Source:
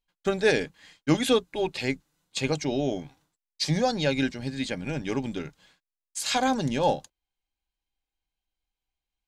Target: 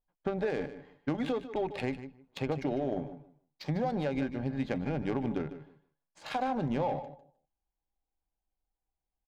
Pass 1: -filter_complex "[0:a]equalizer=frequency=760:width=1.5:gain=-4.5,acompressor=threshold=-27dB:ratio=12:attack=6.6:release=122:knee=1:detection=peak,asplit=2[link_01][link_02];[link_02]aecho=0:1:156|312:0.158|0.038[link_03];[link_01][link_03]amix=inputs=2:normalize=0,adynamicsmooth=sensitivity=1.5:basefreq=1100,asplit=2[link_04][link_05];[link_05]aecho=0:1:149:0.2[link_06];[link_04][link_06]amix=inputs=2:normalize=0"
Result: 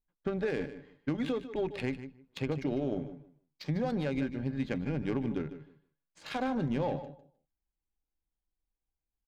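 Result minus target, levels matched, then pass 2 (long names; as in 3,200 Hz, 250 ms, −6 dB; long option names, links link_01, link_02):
1,000 Hz band −4.5 dB
-filter_complex "[0:a]equalizer=frequency=760:width=1.5:gain=5.5,acompressor=threshold=-27dB:ratio=12:attack=6.6:release=122:knee=1:detection=peak,asplit=2[link_01][link_02];[link_02]aecho=0:1:156|312:0.158|0.038[link_03];[link_01][link_03]amix=inputs=2:normalize=0,adynamicsmooth=sensitivity=1.5:basefreq=1100,asplit=2[link_04][link_05];[link_05]aecho=0:1:149:0.2[link_06];[link_04][link_06]amix=inputs=2:normalize=0"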